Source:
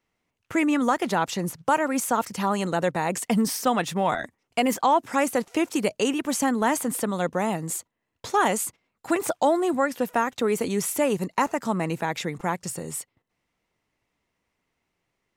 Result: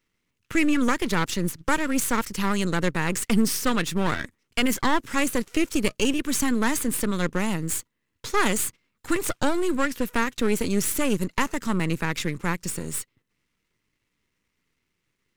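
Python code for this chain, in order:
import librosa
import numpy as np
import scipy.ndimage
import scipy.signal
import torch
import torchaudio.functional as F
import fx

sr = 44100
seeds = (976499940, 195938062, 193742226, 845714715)

y = np.where(x < 0.0, 10.0 ** (-12.0 / 20.0) * x, x)
y = fx.peak_eq(y, sr, hz=720.0, db=-14.0, octaves=0.85)
y = y * librosa.db_to_amplitude(6.0)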